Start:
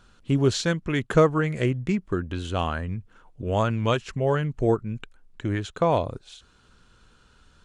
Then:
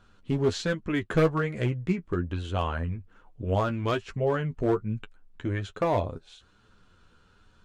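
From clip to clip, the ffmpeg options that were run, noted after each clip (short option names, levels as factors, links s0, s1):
-af "highshelf=f=4800:g=-9,volume=5.96,asoftclip=hard,volume=0.168,flanger=delay=9.3:depth=3:regen=26:speed=1.2:shape=sinusoidal,volume=1.19"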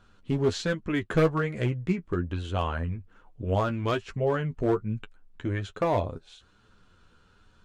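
-af anull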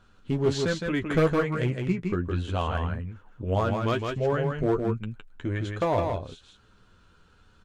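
-af "aecho=1:1:162:0.596"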